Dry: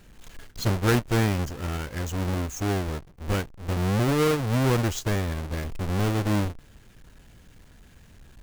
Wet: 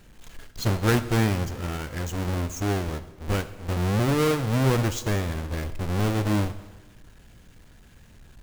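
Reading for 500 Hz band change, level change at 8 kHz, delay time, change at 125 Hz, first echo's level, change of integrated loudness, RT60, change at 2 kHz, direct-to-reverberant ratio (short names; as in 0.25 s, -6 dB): 0.0 dB, 0.0 dB, none, +0.5 dB, none, +0.5 dB, 1.2 s, +0.5 dB, 11.5 dB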